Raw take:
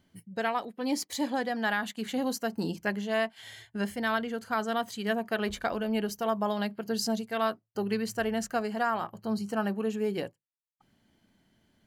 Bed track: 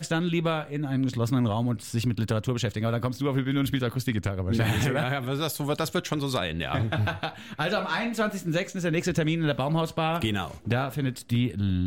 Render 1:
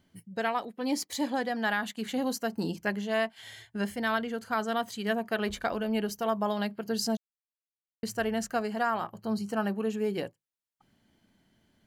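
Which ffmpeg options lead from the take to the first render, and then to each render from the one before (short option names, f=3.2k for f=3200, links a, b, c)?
-filter_complex "[0:a]asplit=3[a][b][c];[a]atrim=end=7.17,asetpts=PTS-STARTPTS,afade=t=out:st=7.166:d=0.004:c=hsin[d];[b]atrim=start=7.17:end=8.03,asetpts=PTS-STARTPTS,volume=0[e];[c]atrim=start=8.03,asetpts=PTS-STARTPTS,afade=t=in:d=0.004:c=hsin[f];[d][e][f]concat=n=3:v=0:a=1"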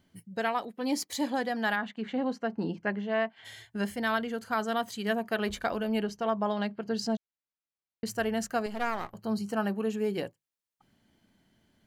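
-filter_complex "[0:a]asplit=3[a][b][c];[a]afade=t=out:st=1.75:d=0.02[d];[b]highpass=110,lowpass=2.4k,afade=t=in:st=1.75:d=0.02,afade=t=out:st=3.44:d=0.02[e];[c]afade=t=in:st=3.44:d=0.02[f];[d][e][f]amix=inputs=3:normalize=0,asettb=1/sr,asplit=3[g][h][i];[g]atrim=end=6.034[j];[h]atrim=start=6.03:end=8.06,asetpts=PTS-STARTPTS,afade=t=in:d=0.004:c=qsin,afade=t=out:st=2.026:d=0.004:c=qsin,adynamicsmooth=sensitivity=1:basefreq=5.2k[k];[i]atrim=start=8.056[l];[j][k]acrossfade=d=0.004:c1=hsin:c2=qsin[m];[m][l]acrossfade=d=0.004:c1=qsin:c2=hsin,asettb=1/sr,asplit=3[n][o][p];[n]atrim=end=8.664[q];[o]atrim=start=8.66:end=9.14,asetpts=PTS-STARTPTS,afade=t=in:d=0.004:c=qsin,afade=t=out:st=0.476:d=0.004:c=qsin,aeval=exprs='if(lt(val(0),0),0.251*val(0),val(0))':c=same[r];[p]atrim=start=9.136[s];[q][r]acrossfade=d=0.004:c1=hsin:c2=qsin[t];[t][s]acrossfade=d=0.004:c1=qsin:c2=hsin"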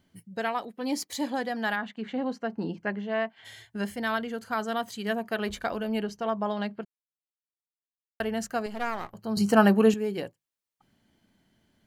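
-filter_complex "[0:a]asplit=5[a][b][c][d][e];[a]atrim=end=6.85,asetpts=PTS-STARTPTS,afade=t=out:st=6.846:d=0.004:c=hsin[f];[b]atrim=start=6.85:end=8.2,asetpts=PTS-STARTPTS,volume=0[g];[c]atrim=start=8.2:end=9.372,asetpts=PTS-STARTPTS,afade=t=in:d=0.004:c=hsin[h];[d]atrim=start=9.368:end=9.942,asetpts=PTS-STARTPTS,volume=11dB[i];[e]atrim=start=9.938[j];[f][g][h]concat=n=3:v=0:a=1[k];[k][i]acrossfade=d=0.004:c1=hsin:c2=hsin[l];[l][j]acrossfade=d=0.004:c1=hsin:c2=hsin"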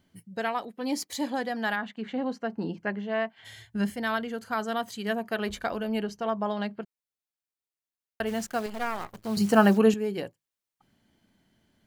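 -filter_complex "[0:a]asettb=1/sr,asplit=3[a][b][c];[a]atrim=end=3.234[d];[b]atrim=start=3.23:end=3.9,asetpts=PTS-STARTPTS,afade=t=in:d=0.004:c=qsin,afade=t=out:st=0.666:d=0.004:c=qsin,asubboost=boost=11:cutoff=240[e];[c]atrim=start=3.896[f];[d][e]acrossfade=d=0.004:c1=hsin:c2=qsin[g];[g][f]acrossfade=d=0.004:c1=qsin:c2=hsin,asplit=3[h][i][j];[h]afade=t=out:st=8.26:d=0.02[k];[i]acrusher=bits=8:dc=4:mix=0:aa=0.000001,afade=t=in:st=8.26:d=0.02,afade=t=out:st=9.77:d=0.02[l];[j]afade=t=in:st=9.77:d=0.02[m];[k][l][m]amix=inputs=3:normalize=0"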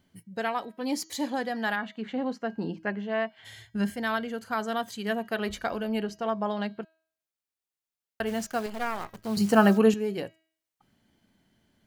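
-af "bandreject=f=321:t=h:w=4,bandreject=f=642:t=h:w=4,bandreject=f=963:t=h:w=4,bandreject=f=1.284k:t=h:w=4,bandreject=f=1.605k:t=h:w=4,bandreject=f=1.926k:t=h:w=4,bandreject=f=2.247k:t=h:w=4,bandreject=f=2.568k:t=h:w=4,bandreject=f=2.889k:t=h:w=4,bandreject=f=3.21k:t=h:w=4,bandreject=f=3.531k:t=h:w=4,bandreject=f=3.852k:t=h:w=4,bandreject=f=4.173k:t=h:w=4,bandreject=f=4.494k:t=h:w=4,bandreject=f=4.815k:t=h:w=4,bandreject=f=5.136k:t=h:w=4,bandreject=f=5.457k:t=h:w=4,bandreject=f=5.778k:t=h:w=4,bandreject=f=6.099k:t=h:w=4,bandreject=f=6.42k:t=h:w=4,bandreject=f=6.741k:t=h:w=4,bandreject=f=7.062k:t=h:w=4"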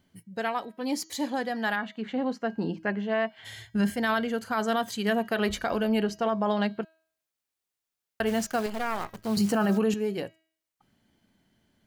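-af "dynaudnorm=f=340:g=17:m=5dB,alimiter=limit=-17dB:level=0:latency=1:release=25"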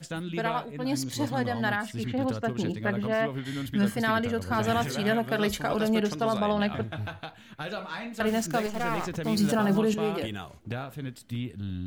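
-filter_complex "[1:a]volume=-8.5dB[a];[0:a][a]amix=inputs=2:normalize=0"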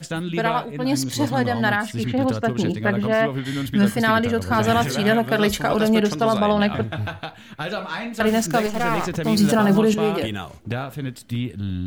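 -af "volume=7.5dB"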